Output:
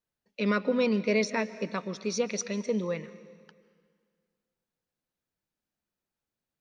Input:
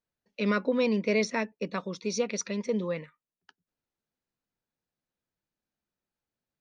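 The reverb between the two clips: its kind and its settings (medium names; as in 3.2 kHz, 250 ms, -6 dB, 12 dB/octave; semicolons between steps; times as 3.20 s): algorithmic reverb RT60 1.9 s, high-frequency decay 0.95×, pre-delay 100 ms, DRR 16 dB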